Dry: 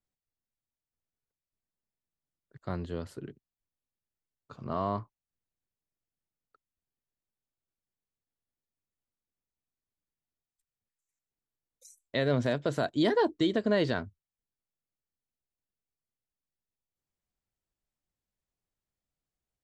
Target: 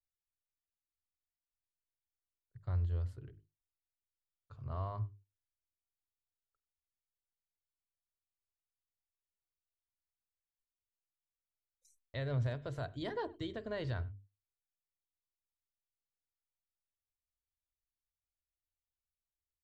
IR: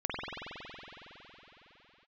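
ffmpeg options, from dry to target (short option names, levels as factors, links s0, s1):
-filter_complex "[0:a]bandreject=f=50:t=h:w=6,bandreject=f=100:t=h:w=6,bandreject=f=150:t=h:w=6,bandreject=f=200:t=h:w=6,bandreject=f=250:t=h:w=6,bandreject=f=300:t=h:w=6,bandreject=f=350:t=h:w=6,bandreject=f=400:t=h:w=6,bandreject=f=450:t=h:w=6,agate=range=0.224:threshold=0.00112:ratio=16:detection=peak,firequalizer=gain_entry='entry(100,0);entry(180,-25);entry(440,-21);entry(1000,-19);entry(6400,-23)':delay=0.05:min_phase=1,asplit=2[s0][s1];[1:a]atrim=start_sample=2205,afade=t=out:st=0.18:d=0.01,atrim=end_sample=8379[s2];[s1][s2]afir=irnorm=-1:irlink=0,volume=0.0944[s3];[s0][s3]amix=inputs=2:normalize=0,volume=2.24"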